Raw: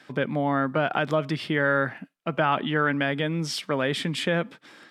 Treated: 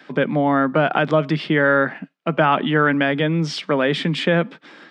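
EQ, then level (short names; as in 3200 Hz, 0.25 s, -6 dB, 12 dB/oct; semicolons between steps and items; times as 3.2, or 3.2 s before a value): elliptic high-pass 150 Hz; tape spacing loss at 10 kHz 29 dB; high shelf 2600 Hz +11 dB; +8.5 dB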